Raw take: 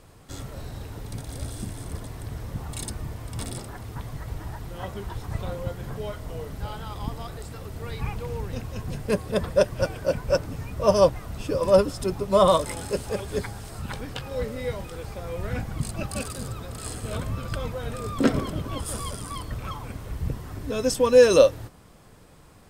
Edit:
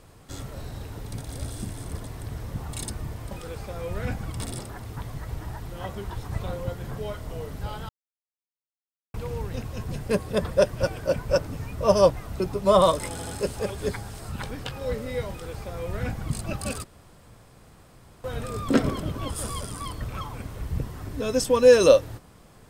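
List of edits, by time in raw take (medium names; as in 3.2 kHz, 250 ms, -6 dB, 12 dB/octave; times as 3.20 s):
6.88–8.13 s: mute
11.39–12.06 s: delete
12.77 s: stutter 0.08 s, 3 plays
14.79–15.80 s: copy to 3.31 s
16.34–17.74 s: room tone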